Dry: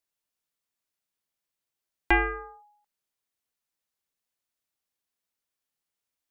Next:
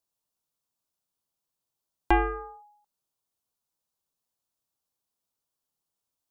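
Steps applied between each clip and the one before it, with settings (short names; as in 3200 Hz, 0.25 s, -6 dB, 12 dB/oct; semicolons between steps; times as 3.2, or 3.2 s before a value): graphic EQ 125/1000/2000 Hz +4/+4/-12 dB; gain +1.5 dB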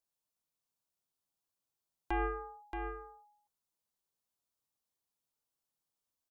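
limiter -20.5 dBFS, peak gain reduction 10 dB; on a send: echo 0.627 s -6.5 dB; on the sum: gain -5 dB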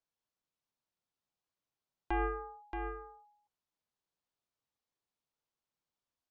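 air absorption 110 m; gain +1 dB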